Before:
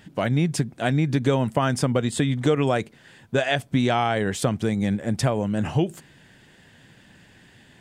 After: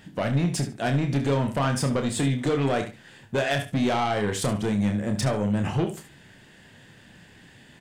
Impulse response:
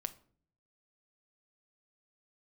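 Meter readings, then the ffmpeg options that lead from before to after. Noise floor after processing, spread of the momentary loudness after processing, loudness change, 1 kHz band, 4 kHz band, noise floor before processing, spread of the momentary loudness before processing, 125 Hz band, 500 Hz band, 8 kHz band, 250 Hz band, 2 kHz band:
-52 dBFS, 4 LU, -2.0 dB, -2.0 dB, -2.0 dB, -54 dBFS, 4 LU, -2.0 dB, -2.5 dB, 0.0 dB, -1.5 dB, -2.5 dB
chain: -filter_complex "[0:a]asplit=2[s0][s1];[s1]aecho=0:1:68|136:0.211|0.0359[s2];[s0][s2]amix=inputs=2:normalize=0,asoftclip=type=tanh:threshold=0.106,asplit=2[s3][s4];[s4]aecho=0:1:29|78:0.473|0.178[s5];[s3][s5]amix=inputs=2:normalize=0"

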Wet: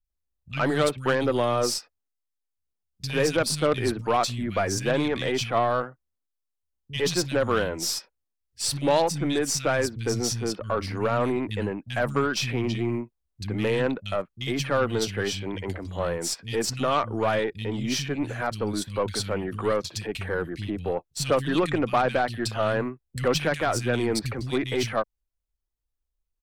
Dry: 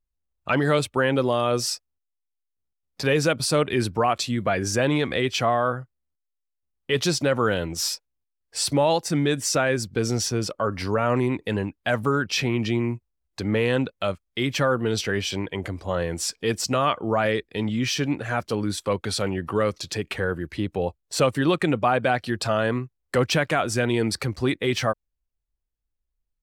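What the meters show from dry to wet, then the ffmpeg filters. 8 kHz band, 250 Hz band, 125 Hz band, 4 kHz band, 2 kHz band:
-1.5 dB, -3.0 dB, -3.0 dB, -2.5 dB, -3.0 dB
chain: -filter_complex "[0:a]acrossover=split=170|2300[s0][s1][s2];[s2]adelay=40[s3];[s1]adelay=100[s4];[s0][s4][s3]amix=inputs=3:normalize=0,aeval=exprs='0.376*(cos(1*acos(clip(val(0)/0.376,-1,1)))-cos(1*PI/2))+0.0668*(cos(4*acos(clip(val(0)/0.376,-1,1)))-cos(4*PI/2))+0.0531*(cos(6*acos(clip(val(0)/0.376,-1,1)))-cos(6*PI/2))':c=same,volume=0.841"

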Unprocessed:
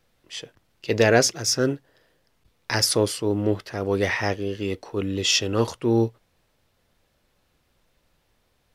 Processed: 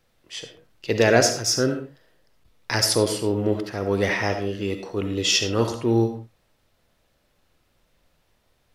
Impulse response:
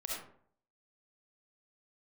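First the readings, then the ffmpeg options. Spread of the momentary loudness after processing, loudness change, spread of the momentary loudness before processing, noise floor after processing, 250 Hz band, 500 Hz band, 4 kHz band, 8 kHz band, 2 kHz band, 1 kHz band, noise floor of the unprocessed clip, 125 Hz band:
18 LU, +0.5 dB, 18 LU, -68 dBFS, +0.5 dB, +0.5 dB, +0.5 dB, +0.5 dB, +0.5 dB, +1.0 dB, -69 dBFS, +0.5 dB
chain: -filter_complex "[0:a]asplit=2[s0][s1];[1:a]atrim=start_sample=2205,afade=t=out:st=0.25:d=0.01,atrim=end_sample=11466[s2];[s1][s2]afir=irnorm=-1:irlink=0,volume=0.668[s3];[s0][s3]amix=inputs=2:normalize=0,volume=0.708"

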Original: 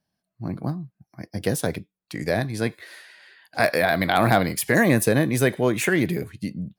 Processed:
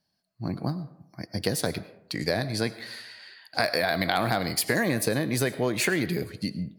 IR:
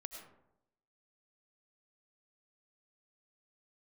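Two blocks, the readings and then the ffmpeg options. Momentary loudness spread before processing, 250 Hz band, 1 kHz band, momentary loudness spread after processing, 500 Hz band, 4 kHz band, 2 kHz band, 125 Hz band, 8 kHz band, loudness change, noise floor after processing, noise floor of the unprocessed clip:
16 LU, -5.5 dB, -5.5 dB, 14 LU, -5.5 dB, +2.0 dB, -4.5 dB, -5.5 dB, -2.0 dB, -5.0 dB, -77 dBFS, -83 dBFS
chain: -filter_complex "[0:a]equalizer=f=4500:t=o:w=0.3:g=11.5,acompressor=threshold=0.0891:ratio=6,asplit=2[s0][s1];[1:a]atrim=start_sample=2205,lowshelf=f=270:g=-9.5[s2];[s1][s2]afir=irnorm=-1:irlink=0,volume=0.75[s3];[s0][s3]amix=inputs=2:normalize=0,volume=0.75"

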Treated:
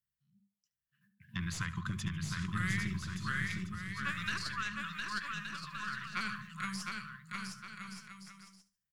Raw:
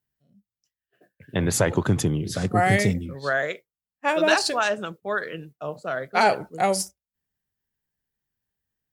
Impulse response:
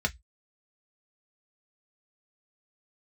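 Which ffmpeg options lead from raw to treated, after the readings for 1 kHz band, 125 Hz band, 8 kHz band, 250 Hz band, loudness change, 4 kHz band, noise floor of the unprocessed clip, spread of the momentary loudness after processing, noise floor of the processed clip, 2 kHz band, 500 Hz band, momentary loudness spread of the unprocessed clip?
-17.0 dB, -11.5 dB, -15.5 dB, -13.0 dB, -14.5 dB, -11.0 dB, under -85 dBFS, 11 LU, under -85 dBFS, -10.0 dB, -35.5 dB, 12 LU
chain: -filter_complex "[0:a]bandreject=f=50:t=h:w=6,bandreject=f=100:t=h:w=6,bandreject=f=150:t=h:w=6,bandreject=f=200:t=h:w=6,afftfilt=real='re*(1-between(b*sr/4096,220,990))':imag='im*(1-between(b*sr/4096,220,990))':win_size=4096:overlap=0.75,aeval=exprs='0.398*(cos(1*acos(clip(val(0)/0.398,-1,1)))-cos(1*PI/2))+0.0355*(cos(2*acos(clip(val(0)/0.398,-1,1)))-cos(2*PI/2))+0.0501*(cos(4*acos(clip(val(0)/0.398,-1,1)))-cos(4*PI/2))':c=same,asplit=2[s0][s1];[s1]aecho=0:1:72|144|216:0.141|0.0438|0.0136[s2];[s0][s2]amix=inputs=2:normalize=0,acrossover=split=360|1800|5500[s3][s4][s5][s6];[s3]acompressor=threshold=0.0501:ratio=4[s7];[s4]acompressor=threshold=0.0316:ratio=4[s8];[s5]acompressor=threshold=0.0282:ratio=4[s9];[s6]acompressor=threshold=0.00447:ratio=4[s10];[s7][s8][s9][s10]amix=inputs=4:normalize=0,asplit=2[s11][s12];[s12]aecho=0:1:710|1172|1471|1666|1793:0.631|0.398|0.251|0.158|0.1[s13];[s11][s13]amix=inputs=2:normalize=0,volume=0.355"

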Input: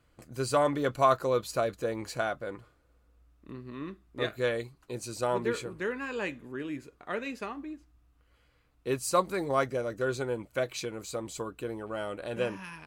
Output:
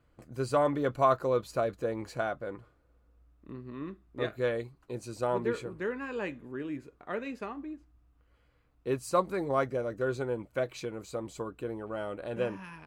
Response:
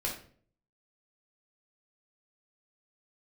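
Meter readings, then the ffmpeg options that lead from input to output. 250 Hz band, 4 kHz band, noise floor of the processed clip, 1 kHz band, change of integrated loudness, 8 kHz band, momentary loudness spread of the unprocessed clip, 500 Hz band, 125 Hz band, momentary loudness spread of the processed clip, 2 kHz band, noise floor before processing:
0.0 dB, -7.0 dB, -68 dBFS, -1.5 dB, -1.0 dB, -9.0 dB, 14 LU, -0.5 dB, 0.0 dB, 14 LU, -3.5 dB, -67 dBFS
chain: -af "highshelf=f=2300:g=-9.5"

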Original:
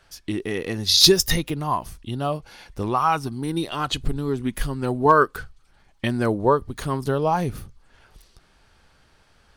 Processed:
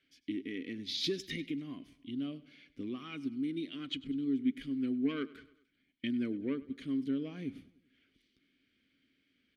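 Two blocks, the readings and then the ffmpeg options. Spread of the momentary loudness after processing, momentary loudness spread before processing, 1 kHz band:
11 LU, 14 LU, -33.5 dB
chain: -filter_complex "[0:a]acontrast=81,asplit=3[s0][s1][s2];[s0]bandpass=f=270:t=q:w=8,volume=1[s3];[s1]bandpass=f=2290:t=q:w=8,volume=0.501[s4];[s2]bandpass=f=3010:t=q:w=8,volume=0.355[s5];[s3][s4][s5]amix=inputs=3:normalize=0,aecho=1:1:99|198|297|396:0.106|0.0561|0.0298|0.0158,volume=0.422"

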